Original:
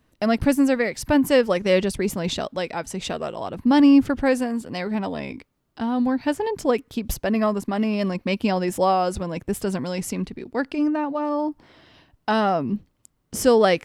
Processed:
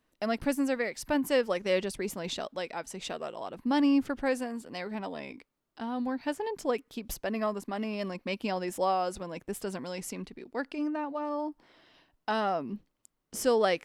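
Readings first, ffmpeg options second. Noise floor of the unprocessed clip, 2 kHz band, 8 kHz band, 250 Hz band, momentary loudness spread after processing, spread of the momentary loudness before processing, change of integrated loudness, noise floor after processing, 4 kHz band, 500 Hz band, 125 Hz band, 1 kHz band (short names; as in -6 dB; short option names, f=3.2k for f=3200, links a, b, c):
-69 dBFS, -7.5 dB, -7.5 dB, -11.0 dB, 12 LU, 12 LU, -9.5 dB, -79 dBFS, -7.5 dB, -8.5 dB, -13.5 dB, -8.0 dB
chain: -af "equalizer=f=86:t=o:w=2.1:g=-12.5,volume=-7.5dB"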